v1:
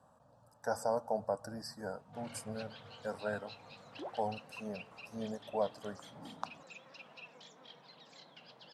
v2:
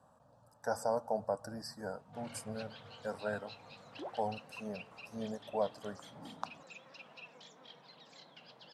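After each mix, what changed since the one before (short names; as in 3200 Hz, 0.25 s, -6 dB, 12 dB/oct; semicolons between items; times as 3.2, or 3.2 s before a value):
none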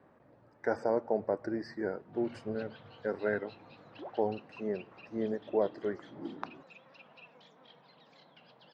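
speech: remove fixed phaser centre 870 Hz, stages 4; master: add air absorption 210 m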